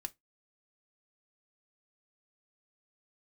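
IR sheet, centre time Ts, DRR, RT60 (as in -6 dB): 3 ms, 7.5 dB, 0.15 s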